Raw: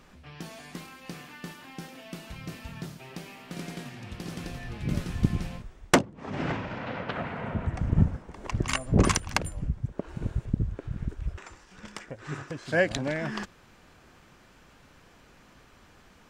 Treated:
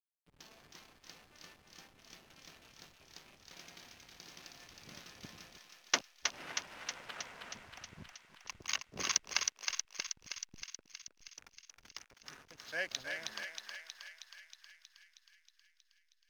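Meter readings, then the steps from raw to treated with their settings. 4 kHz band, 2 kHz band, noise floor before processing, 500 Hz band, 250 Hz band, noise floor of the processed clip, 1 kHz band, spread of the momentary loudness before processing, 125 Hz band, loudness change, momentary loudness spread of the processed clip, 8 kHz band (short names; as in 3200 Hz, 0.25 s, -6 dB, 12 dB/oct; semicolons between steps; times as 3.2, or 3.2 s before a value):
-1.0 dB, -7.5 dB, -57 dBFS, -19.5 dB, -27.0 dB, -74 dBFS, -13.5 dB, 18 LU, -32.5 dB, -9.0 dB, 22 LU, +0.5 dB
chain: brick-wall FIR low-pass 6700 Hz; differentiator; backlash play -48 dBFS; on a send: thinning echo 0.317 s, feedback 70%, high-pass 890 Hz, level -3.5 dB; on the sum: gain +2.5 dB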